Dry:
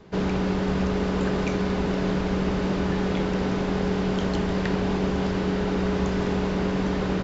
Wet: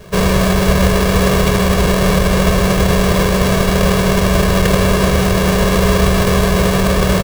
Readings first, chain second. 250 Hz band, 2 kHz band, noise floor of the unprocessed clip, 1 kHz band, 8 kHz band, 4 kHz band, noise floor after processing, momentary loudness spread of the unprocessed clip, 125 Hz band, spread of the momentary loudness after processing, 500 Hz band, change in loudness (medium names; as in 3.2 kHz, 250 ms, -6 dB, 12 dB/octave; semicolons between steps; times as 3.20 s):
+9.0 dB, +14.5 dB, -26 dBFS, +13.0 dB, no reading, +16.0 dB, -15 dBFS, 1 LU, +13.0 dB, 1 LU, +11.5 dB, +12.0 dB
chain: square wave that keeps the level; comb 1.8 ms, depth 71%; trim +6.5 dB